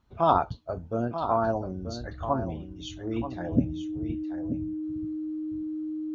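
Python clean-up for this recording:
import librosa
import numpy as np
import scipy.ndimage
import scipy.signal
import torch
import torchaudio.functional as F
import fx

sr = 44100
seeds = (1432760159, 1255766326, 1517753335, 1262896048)

y = fx.notch(x, sr, hz=310.0, q=30.0)
y = fx.fix_echo_inverse(y, sr, delay_ms=933, level_db=-9.5)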